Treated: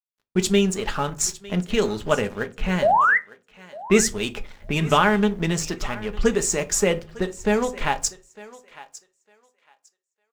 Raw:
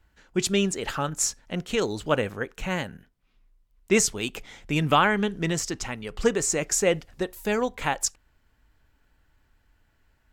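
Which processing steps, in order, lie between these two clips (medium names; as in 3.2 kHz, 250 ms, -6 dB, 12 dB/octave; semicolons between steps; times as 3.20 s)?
level-controlled noise filter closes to 1.5 kHz, open at -21 dBFS; bass shelf 61 Hz +9 dB; comb 4.9 ms, depth 33%; in parallel at 0 dB: compression, threshold -32 dBFS, peak gain reduction 17.5 dB; on the sum: crossover distortion -39 dBFS; painted sound rise, 2.82–3.18 s, 540–2100 Hz -17 dBFS; bit crusher 11-bit; thinning echo 904 ms, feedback 19%, high-pass 500 Hz, level -17.5 dB; on a send at -10 dB: reverberation RT60 0.35 s, pre-delay 5 ms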